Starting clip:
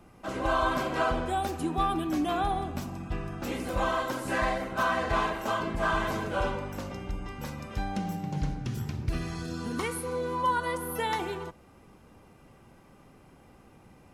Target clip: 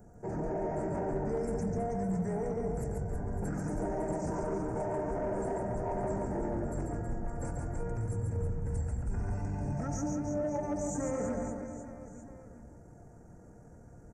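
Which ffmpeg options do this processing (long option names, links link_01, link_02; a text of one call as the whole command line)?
ffmpeg -i in.wav -filter_complex "[0:a]equalizer=frequency=1900:width_type=o:width=0.22:gain=-12.5,asetrate=26222,aresample=44100,atempo=1.68179,alimiter=level_in=4.5dB:limit=-24dB:level=0:latency=1:release=42,volume=-4.5dB,asuperstop=centerf=3500:order=4:qfactor=0.54,asplit=2[link_01][link_02];[link_02]aecho=0:1:140|322|558.6|866.2|1266:0.631|0.398|0.251|0.158|0.1[link_03];[link_01][link_03]amix=inputs=2:normalize=0,acontrast=46,asoftclip=type=tanh:threshold=-19dB,highshelf=frequency=7200:gain=10.5,asoftclip=type=hard:threshold=-21.5dB,volume=-4.5dB" out.wav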